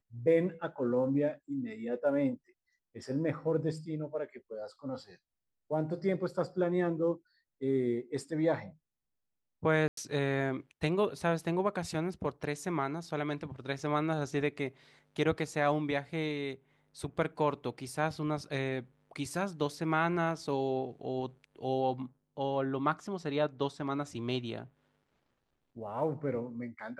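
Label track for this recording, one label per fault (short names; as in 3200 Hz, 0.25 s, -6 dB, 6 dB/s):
9.880000	9.970000	gap 93 ms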